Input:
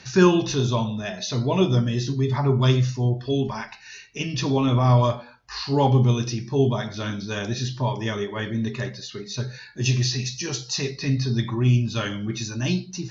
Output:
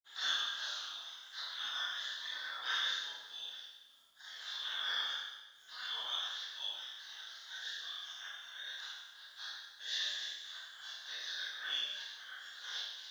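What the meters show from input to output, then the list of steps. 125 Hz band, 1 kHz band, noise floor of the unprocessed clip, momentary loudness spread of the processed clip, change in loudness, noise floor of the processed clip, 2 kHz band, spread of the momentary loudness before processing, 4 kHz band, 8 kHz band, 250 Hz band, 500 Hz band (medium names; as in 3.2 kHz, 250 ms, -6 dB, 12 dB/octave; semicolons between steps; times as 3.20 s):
under -40 dB, -20.0 dB, -45 dBFS, 12 LU, -16.0 dB, -59 dBFS, -7.5 dB, 13 LU, -4.5 dB, no reading, under -40 dB, -38.5 dB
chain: spectral gate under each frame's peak -30 dB weak; two resonant band-passes 2.4 kHz, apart 1.1 oct; companded quantiser 8-bit; Schroeder reverb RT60 1.1 s, combs from 25 ms, DRR -9.5 dB; trim +1 dB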